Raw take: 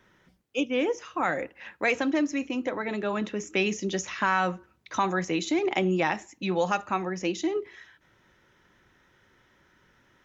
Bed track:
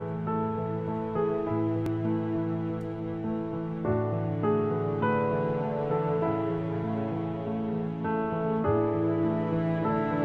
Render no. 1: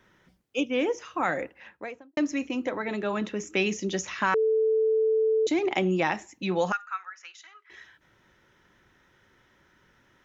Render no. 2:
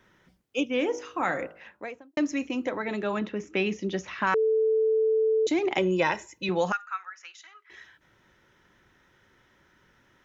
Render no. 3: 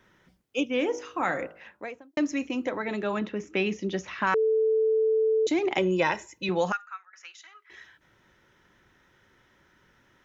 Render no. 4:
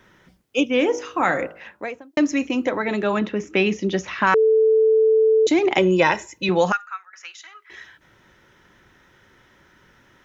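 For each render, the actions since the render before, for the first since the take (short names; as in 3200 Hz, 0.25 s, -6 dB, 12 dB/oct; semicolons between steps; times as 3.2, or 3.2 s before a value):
1.39–2.17 studio fade out; 4.34–5.47 bleep 440 Hz -20 dBFS; 6.72–7.7 ladder high-pass 1300 Hz, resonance 75%
0.72–1.84 de-hum 53.55 Hz, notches 29; 3.19–4.27 air absorption 170 m; 5.78–6.49 comb 2 ms, depth 70%
6.69–7.13 fade out, to -21.5 dB
gain +7.5 dB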